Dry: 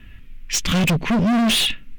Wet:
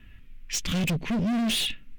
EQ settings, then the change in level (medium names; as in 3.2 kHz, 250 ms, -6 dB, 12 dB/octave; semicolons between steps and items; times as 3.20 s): dynamic bell 1.1 kHz, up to -6 dB, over -35 dBFS, Q 0.97; -7.5 dB